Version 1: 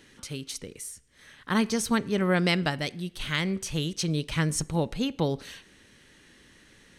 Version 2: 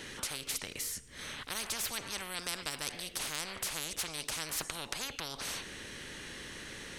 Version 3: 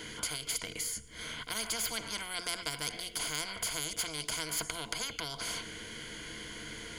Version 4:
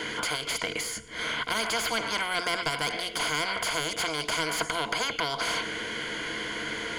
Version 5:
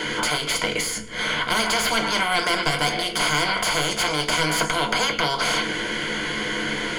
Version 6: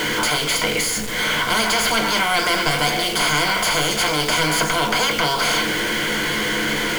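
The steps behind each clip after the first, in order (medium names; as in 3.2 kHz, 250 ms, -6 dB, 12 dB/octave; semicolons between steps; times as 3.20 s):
spectrum-flattening compressor 10:1
rippled EQ curve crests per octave 1.8, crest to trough 12 dB
overdrive pedal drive 20 dB, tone 1.3 kHz, clips at -11.5 dBFS; trim +3.5 dB
reverberation, pre-delay 5 ms, DRR 3.5 dB; trim +5.5 dB
jump at every zero crossing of -22 dBFS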